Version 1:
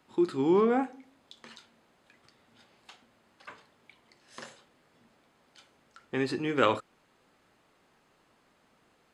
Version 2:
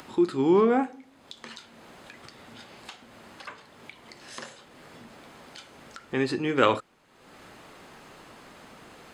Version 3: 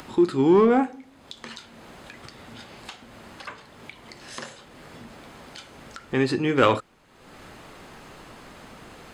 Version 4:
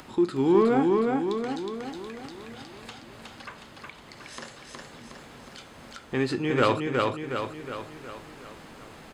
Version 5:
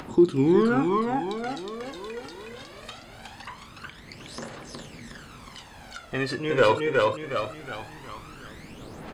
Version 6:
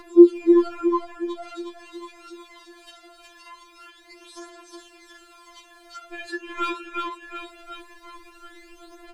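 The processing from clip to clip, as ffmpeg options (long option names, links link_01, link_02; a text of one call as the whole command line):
ffmpeg -i in.wav -af "acompressor=mode=upward:threshold=-39dB:ratio=2.5,volume=3.5dB" out.wav
ffmpeg -i in.wav -filter_complex "[0:a]lowshelf=frequency=100:gain=9.5,asplit=2[link_01][link_02];[link_02]asoftclip=type=hard:threshold=-18dB,volume=-7dB[link_03];[link_01][link_03]amix=inputs=2:normalize=0" out.wav
ffmpeg -i in.wav -af "aecho=1:1:365|730|1095|1460|1825|2190|2555:0.708|0.375|0.199|0.105|0.0559|0.0296|0.0157,volume=-4dB" out.wav
ffmpeg -i in.wav -af "aphaser=in_gain=1:out_gain=1:delay=2.2:decay=0.62:speed=0.22:type=triangular" out.wav
ffmpeg -i in.wav -af "afftfilt=real='re*4*eq(mod(b,16),0)':imag='im*4*eq(mod(b,16),0)':win_size=2048:overlap=0.75,volume=-1dB" out.wav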